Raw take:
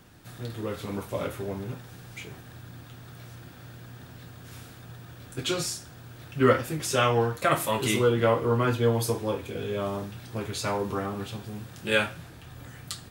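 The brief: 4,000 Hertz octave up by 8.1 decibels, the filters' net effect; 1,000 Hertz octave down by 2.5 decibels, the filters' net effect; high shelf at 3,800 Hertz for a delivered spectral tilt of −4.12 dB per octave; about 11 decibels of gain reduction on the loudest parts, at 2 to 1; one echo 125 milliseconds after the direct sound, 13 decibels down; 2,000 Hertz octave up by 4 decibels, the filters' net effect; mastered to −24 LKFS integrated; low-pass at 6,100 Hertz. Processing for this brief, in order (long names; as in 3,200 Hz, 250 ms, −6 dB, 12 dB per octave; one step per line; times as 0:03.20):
low-pass filter 6,100 Hz
parametric band 1,000 Hz −6 dB
parametric band 2,000 Hz +4 dB
high-shelf EQ 3,800 Hz +4.5 dB
parametric band 4,000 Hz +7.5 dB
downward compressor 2 to 1, threshold −36 dBFS
single-tap delay 125 ms −13 dB
level +11.5 dB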